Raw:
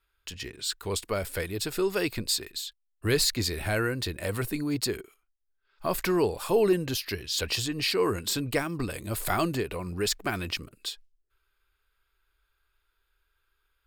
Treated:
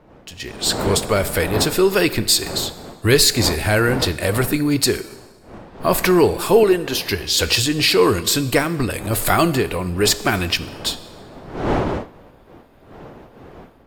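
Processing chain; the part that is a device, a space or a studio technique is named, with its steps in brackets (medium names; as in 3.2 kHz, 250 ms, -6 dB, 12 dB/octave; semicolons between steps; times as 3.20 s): 6.63–7.09 s: tone controls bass -13 dB, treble -4 dB; Schroeder reverb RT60 1.2 s, combs from 26 ms, DRR 15 dB; smartphone video outdoors (wind noise 580 Hz -43 dBFS; level rider gain up to 12 dB; AAC 64 kbps 44.1 kHz)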